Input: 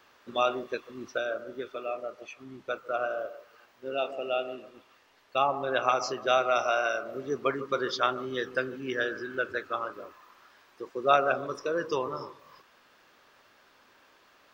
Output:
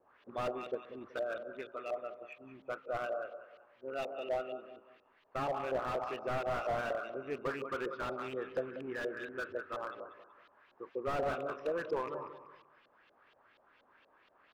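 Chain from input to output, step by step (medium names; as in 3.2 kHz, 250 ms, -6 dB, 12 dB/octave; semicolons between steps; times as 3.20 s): rattle on loud lows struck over -40 dBFS, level -32 dBFS; LFO low-pass saw up 4.2 Hz 500–3600 Hz; on a send: feedback delay 188 ms, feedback 33%, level -13 dB; on the sum: slew-rate limiter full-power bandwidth 55 Hz; trim -8.5 dB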